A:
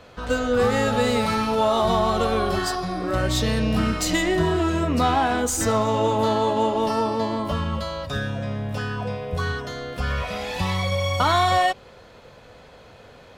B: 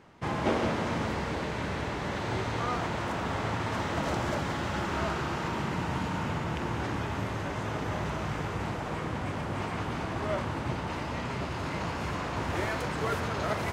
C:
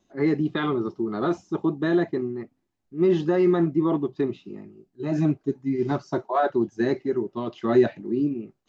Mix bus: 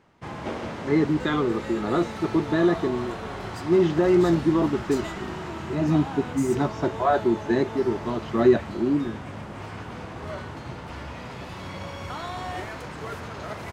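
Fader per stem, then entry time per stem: -16.0, -4.5, +1.0 dB; 0.90, 0.00, 0.70 s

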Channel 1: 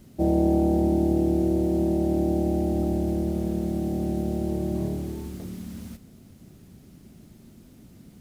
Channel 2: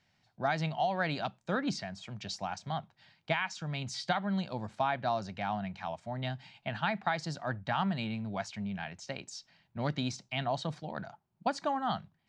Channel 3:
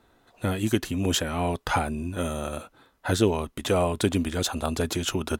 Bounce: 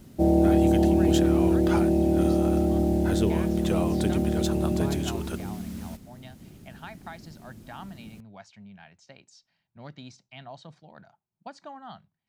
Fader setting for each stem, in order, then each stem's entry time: +1.5, -10.5, -7.0 dB; 0.00, 0.00, 0.00 s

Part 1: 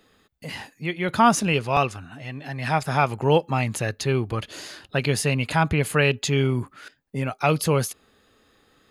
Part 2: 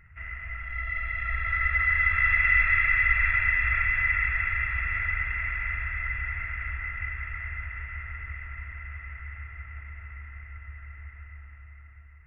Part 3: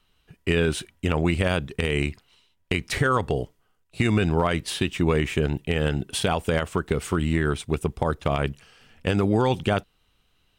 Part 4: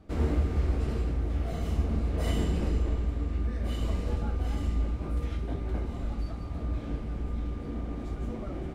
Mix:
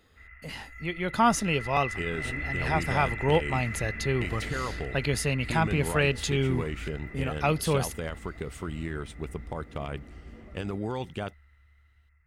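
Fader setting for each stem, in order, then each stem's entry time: -5.0, -13.0, -11.5, -12.5 dB; 0.00, 0.00, 1.50, 2.05 s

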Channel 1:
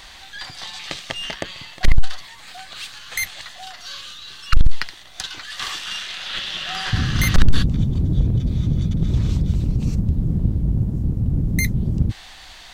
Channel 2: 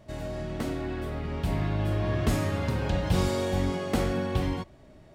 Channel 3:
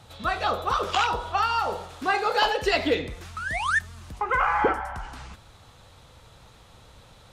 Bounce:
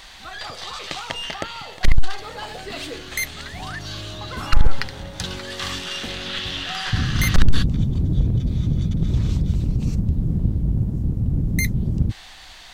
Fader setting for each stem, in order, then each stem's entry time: -1.0, -8.0, -12.0 dB; 0.00, 2.10, 0.00 s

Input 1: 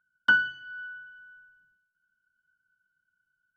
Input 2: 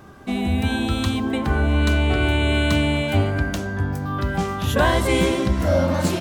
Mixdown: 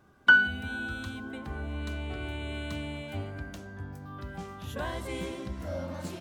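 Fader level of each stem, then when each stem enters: +2.5, -17.0 dB; 0.00, 0.00 s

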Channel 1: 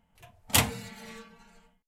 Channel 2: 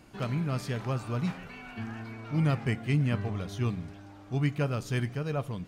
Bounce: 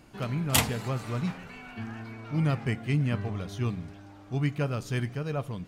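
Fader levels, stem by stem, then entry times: -1.0, 0.0 dB; 0.00, 0.00 s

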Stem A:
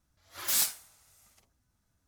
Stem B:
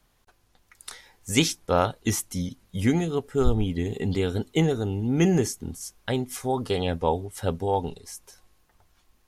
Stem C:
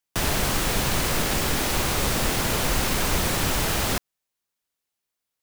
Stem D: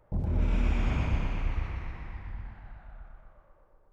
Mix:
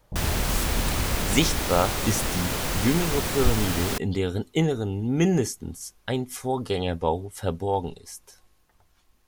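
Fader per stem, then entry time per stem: -8.5, -0.5, -4.0, -1.0 dB; 0.00, 0.00, 0.00, 0.00 s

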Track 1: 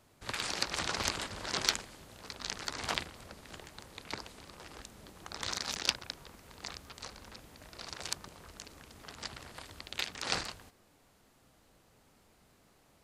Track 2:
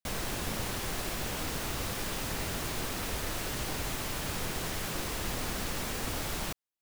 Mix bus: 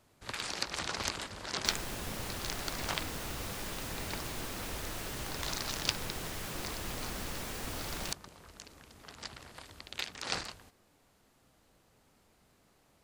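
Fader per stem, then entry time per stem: -2.0, -5.0 dB; 0.00, 1.60 s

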